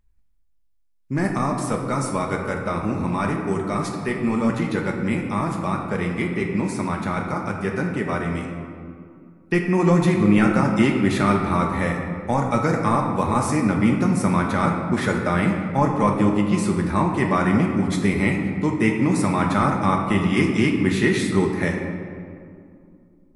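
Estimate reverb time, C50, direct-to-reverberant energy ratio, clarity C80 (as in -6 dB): 2.3 s, 3.5 dB, 0.5 dB, 5.0 dB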